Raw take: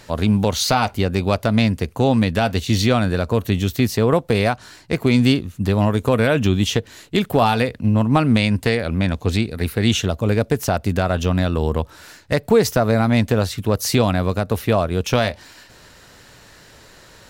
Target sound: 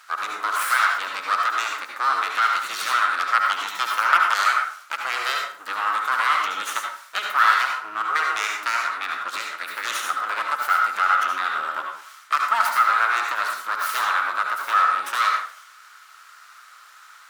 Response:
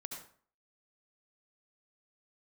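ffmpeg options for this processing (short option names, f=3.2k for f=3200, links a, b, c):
-filter_complex "[0:a]aeval=exprs='abs(val(0))':c=same,asplit=3[a][b][c];[a]afade=t=out:st=3.15:d=0.02[d];[b]aeval=exprs='0.531*(cos(1*acos(clip(val(0)/0.531,-1,1)))-cos(1*PI/2))+0.237*(cos(3*acos(clip(val(0)/0.531,-1,1)))-cos(3*PI/2))+0.237*(cos(4*acos(clip(val(0)/0.531,-1,1)))-cos(4*PI/2))':c=same,afade=t=in:st=3.15:d=0.02,afade=t=out:st=4.43:d=0.02[e];[c]afade=t=in:st=4.43:d=0.02[f];[d][e][f]amix=inputs=3:normalize=0,highpass=f=1.3k:t=q:w=6.7[g];[1:a]atrim=start_sample=2205[h];[g][h]afir=irnorm=-1:irlink=0"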